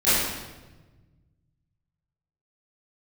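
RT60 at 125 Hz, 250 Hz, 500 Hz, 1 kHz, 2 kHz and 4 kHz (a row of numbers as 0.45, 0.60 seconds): 2.6, 1.8, 1.3, 1.1, 1.0, 0.90 seconds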